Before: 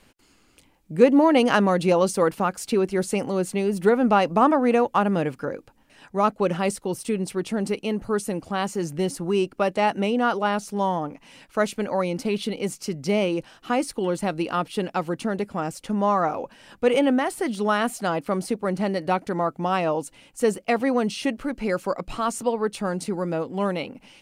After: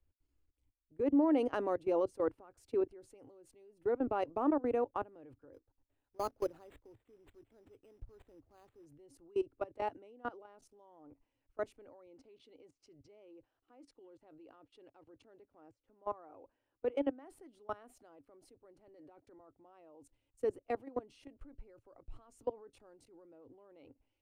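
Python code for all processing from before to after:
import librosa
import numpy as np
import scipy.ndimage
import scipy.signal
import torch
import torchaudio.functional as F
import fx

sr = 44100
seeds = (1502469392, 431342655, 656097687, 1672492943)

y = fx.chain(x, sr, fx.high_shelf(hz=2700.0, db=-5.0),
    fx.resample_bad(factor=8, down='none', up='hold'),
    fx.quant_float(bits=2), at=(5.53, 8.86))
y = fx.chain(y, sr, fx.lowpass(hz=5900.0, slope=12),
    fx.low_shelf(hz=97.0, db=-11.5), at=(12.06, 17.23))
y = fx.chain(y, sr, fx.highpass(hz=150.0, slope=12),
    fx.over_compress(threshold_db=-29.0, ratio=-1.0), at=(18.87, 19.4))
y = fx.level_steps(y, sr, step_db=20)
y = fx.curve_eq(y, sr, hz=(110.0, 190.0, 280.0, 4600.0), db=(0, -26, -3, -21))
y = fx.band_widen(y, sr, depth_pct=40)
y = y * 10.0 ** (-5.0 / 20.0)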